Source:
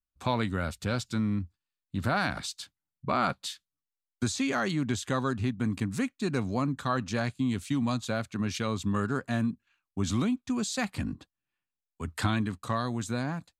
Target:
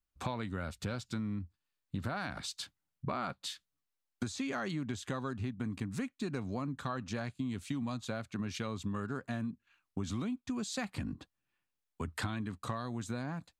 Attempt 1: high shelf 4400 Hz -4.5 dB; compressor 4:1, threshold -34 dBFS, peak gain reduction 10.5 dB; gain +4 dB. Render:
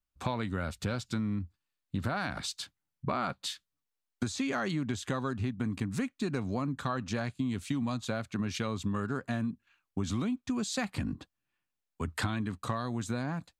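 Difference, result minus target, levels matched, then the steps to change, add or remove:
compressor: peak gain reduction -4.5 dB
change: compressor 4:1, threshold -40 dBFS, peak gain reduction 15 dB

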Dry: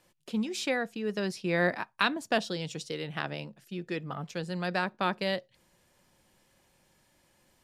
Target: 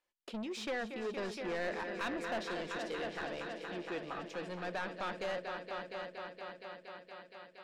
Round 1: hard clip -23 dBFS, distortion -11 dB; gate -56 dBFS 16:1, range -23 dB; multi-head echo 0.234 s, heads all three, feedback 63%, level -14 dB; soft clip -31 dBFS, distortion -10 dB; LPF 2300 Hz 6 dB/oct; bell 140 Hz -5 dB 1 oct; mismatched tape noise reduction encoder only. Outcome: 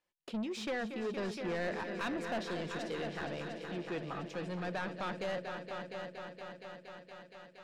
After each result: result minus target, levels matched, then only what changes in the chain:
hard clip: distortion +18 dB; 125 Hz band +6.5 dB
change: hard clip -13.5 dBFS, distortion -28 dB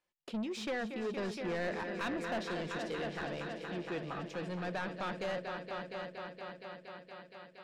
125 Hz band +6.0 dB
change: bell 140 Hz -16 dB 1 oct

